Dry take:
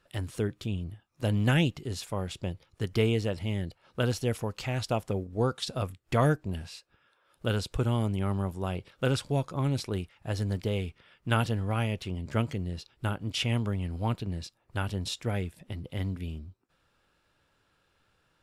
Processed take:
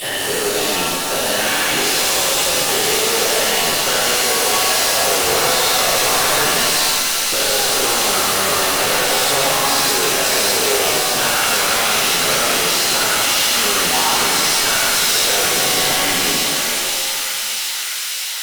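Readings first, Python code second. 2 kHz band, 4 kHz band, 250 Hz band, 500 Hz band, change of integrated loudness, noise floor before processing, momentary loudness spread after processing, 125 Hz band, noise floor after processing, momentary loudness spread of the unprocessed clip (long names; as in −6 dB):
+21.5 dB, +25.0 dB, +4.0 dB, +13.0 dB, +17.0 dB, −72 dBFS, 4 LU, −6.5 dB, −22 dBFS, 11 LU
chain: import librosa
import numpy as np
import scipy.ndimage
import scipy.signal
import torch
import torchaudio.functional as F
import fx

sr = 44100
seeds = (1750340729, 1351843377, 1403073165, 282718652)

y = fx.spec_dilate(x, sr, span_ms=240)
y = scipy.signal.sosfilt(scipy.signal.butter(2, 420.0, 'highpass', fs=sr, output='sos'), y)
y = fx.high_shelf(y, sr, hz=4400.0, db=10.0)
y = fx.fuzz(y, sr, gain_db=43.0, gate_db=-49.0)
y = fx.echo_wet_highpass(y, sr, ms=611, feedback_pct=83, hz=1900.0, wet_db=-4.0)
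y = fx.rev_shimmer(y, sr, seeds[0], rt60_s=2.5, semitones=7, shimmer_db=-2, drr_db=-0.5)
y = F.gain(torch.from_numpy(y), -8.5).numpy()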